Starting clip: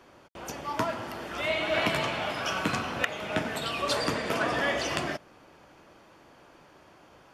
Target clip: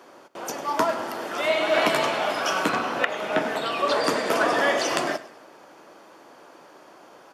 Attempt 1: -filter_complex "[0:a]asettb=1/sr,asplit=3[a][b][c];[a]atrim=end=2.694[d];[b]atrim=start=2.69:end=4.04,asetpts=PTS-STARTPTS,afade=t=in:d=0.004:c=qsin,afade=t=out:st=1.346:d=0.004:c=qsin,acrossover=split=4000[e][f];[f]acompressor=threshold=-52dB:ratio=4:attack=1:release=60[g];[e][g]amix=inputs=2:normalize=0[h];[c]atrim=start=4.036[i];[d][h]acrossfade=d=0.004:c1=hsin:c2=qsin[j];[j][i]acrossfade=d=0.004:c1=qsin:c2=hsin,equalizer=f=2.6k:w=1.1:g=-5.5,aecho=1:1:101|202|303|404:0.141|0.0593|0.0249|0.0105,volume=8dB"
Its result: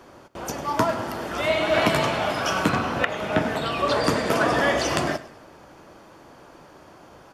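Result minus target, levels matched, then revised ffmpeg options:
250 Hz band +3.5 dB
-filter_complex "[0:a]asettb=1/sr,asplit=3[a][b][c];[a]atrim=end=2.694[d];[b]atrim=start=2.69:end=4.04,asetpts=PTS-STARTPTS,afade=t=in:d=0.004:c=qsin,afade=t=out:st=1.346:d=0.004:c=qsin,acrossover=split=4000[e][f];[f]acompressor=threshold=-52dB:ratio=4:attack=1:release=60[g];[e][g]amix=inputs=2:normalize=0[h];[c]atrim=start=4.036[i];[d][h]acrossfade=d=0.004:c1=hsin:c2=qsin[j];[j][i]acrossfade=d=0.004:c1=qsin:c2=hsin,highpass=300,equalizer=f=2.6k:w=1.1:g=-5.5,aecho=1:1:101|202|303|404:0.141|0.0593|0.0249|0.0105,volume=8dB"

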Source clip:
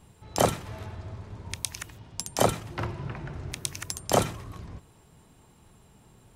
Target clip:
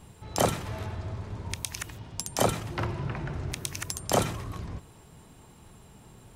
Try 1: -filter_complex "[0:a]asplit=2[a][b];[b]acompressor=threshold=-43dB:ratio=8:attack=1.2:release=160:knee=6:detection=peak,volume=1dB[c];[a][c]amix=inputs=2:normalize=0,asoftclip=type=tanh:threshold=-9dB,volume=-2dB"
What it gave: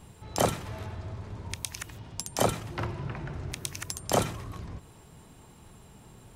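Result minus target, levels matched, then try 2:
compressor: peak gain reduction +10 dB
-filter_complex "[0:a]asplit=2[a][b];[b]acompressor=threshold=-31.5dB:ratio=8:attack=1.2:release=160:knee=6:detection=peak,volume=1dB[c];[a][c]amix=inputs=2:normalize=0,asoftclip=type=tanh:threshold=-9dB,volume=-2dB"

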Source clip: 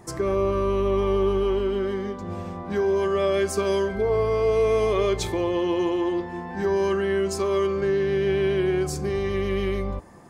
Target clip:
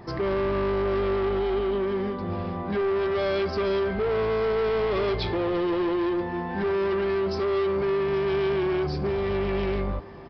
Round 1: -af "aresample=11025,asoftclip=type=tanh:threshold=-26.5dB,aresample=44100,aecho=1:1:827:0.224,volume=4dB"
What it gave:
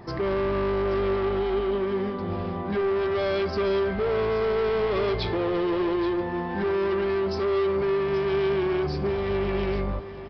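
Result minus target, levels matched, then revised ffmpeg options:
echo-to-direct +8 dB
-af "aresample=11025,asoftclip=type=tanh:threshold=-26.5dB,aresample=44100,aecho=1:1:827:0.0891,volume=4dB"

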